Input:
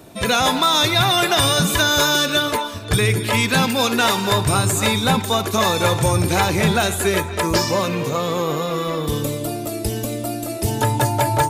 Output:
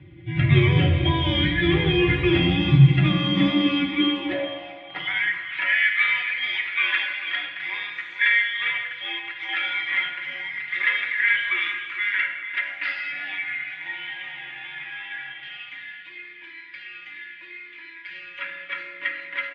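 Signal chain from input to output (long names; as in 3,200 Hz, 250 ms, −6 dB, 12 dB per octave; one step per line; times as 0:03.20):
flat-topped bell 1,200 Hz −14.5 dB 1.3 octaves
mains-hum notches 60/120/180 Hz
time stretch by overlap-add 1.7×, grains 22 ms
single-sideband voice off tune −330 Hz 160–3,000 Hz
double-tracking delay 14 ms −12 dB
far-end echo of a speakerphone 160 ms, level −20 dB
convolution reverb RT60 1.3 s, pre-delay 5 ms, DRR 3.5 dB
high-pass filter sweep 100 Hz → 1,600 Hz, 0:02.49–0:06.03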